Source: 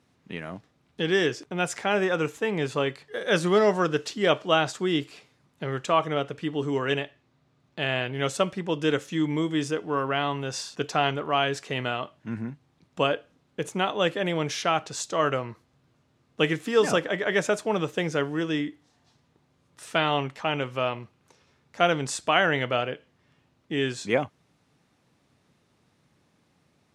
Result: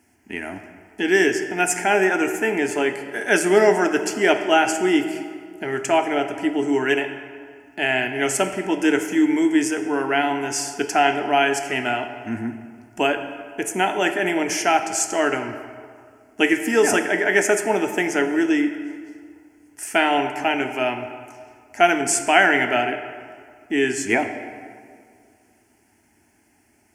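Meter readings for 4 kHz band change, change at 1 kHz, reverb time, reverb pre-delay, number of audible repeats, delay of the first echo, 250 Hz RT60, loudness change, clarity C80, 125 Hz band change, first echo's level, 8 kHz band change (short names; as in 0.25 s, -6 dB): +2.0 dB, +6.5 dB, 2.1 s, 6 ms, none, none, 2.2 s, +6.0 dB, 9.5 dB, -5.5 dB, none, +12.0 dB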